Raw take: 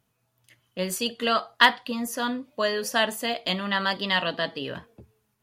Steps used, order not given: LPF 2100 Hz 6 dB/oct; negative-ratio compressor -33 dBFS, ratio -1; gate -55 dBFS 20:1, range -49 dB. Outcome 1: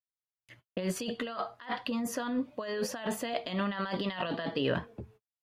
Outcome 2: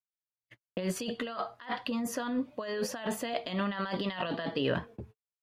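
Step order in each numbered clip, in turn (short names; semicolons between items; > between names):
negative-ratio compressor > gate > LPF; gate > negative-ratio compressor > LPF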